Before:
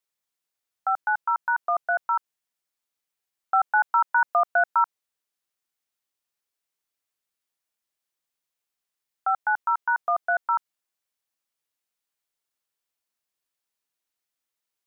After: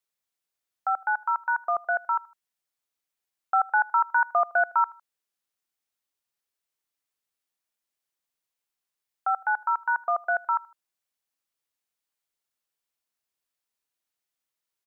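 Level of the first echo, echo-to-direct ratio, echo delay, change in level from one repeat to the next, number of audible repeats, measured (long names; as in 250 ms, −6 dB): −23.0 dB, −22.5 dB, 78 ms, −9.0 dB, 2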